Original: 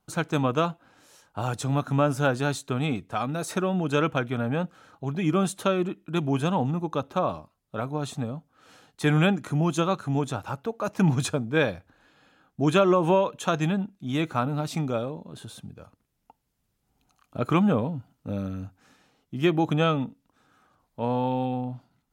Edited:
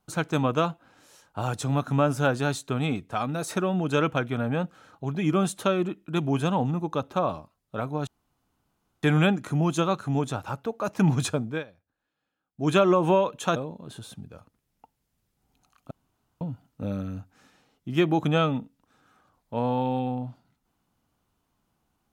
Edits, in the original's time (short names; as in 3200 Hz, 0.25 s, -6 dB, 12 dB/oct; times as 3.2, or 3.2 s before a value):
8.07–9.03 room tone
11.46–12.71 dip -22.5 dB, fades 0.18 s
13.56–15.02 cut
17.37–17.87 room tone